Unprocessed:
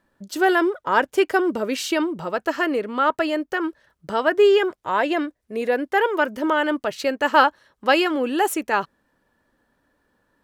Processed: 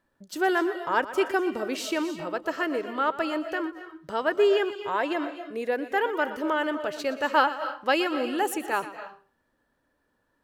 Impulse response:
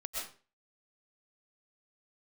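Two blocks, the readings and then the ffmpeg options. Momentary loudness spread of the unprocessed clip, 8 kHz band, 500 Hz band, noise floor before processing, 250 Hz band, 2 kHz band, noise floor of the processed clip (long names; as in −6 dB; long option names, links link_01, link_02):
9 LU, −5.5 dB, −5.5 dB, −73 dBFS, −6.0 dB, −5.5 dB, −74 dBFS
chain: -filter_complex "[0:a]equalizer=frequency=200:width_type=o:width=0.22:gain=-5,asplit=2[link_01][link_02];[1:a]atrim=start_sample=2205,adelay=121[link_03];[link_02][link_03]afir=irnorm=-1:irlink=0,volume=-11dB[link_04];[link_01][link_04]amix=inputs=2:normalize=0,volume=-6dB"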